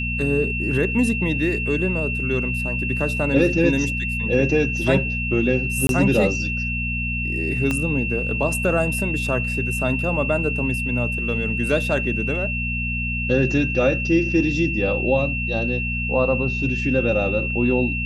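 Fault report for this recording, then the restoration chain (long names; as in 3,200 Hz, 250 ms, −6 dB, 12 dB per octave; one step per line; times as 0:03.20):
mains hum 60 Hz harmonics 4 −27 dBFS
whistle 2,700 Hz −25 dBFS
0:05.87–0:05.89: drop-out 22 ms
0:07.71: click −10 dBFS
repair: click removal
hum removal 60 Hz, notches 4
notch filter 2,700 Hz, Q 30
repair the gap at 0:05.87, 22 ms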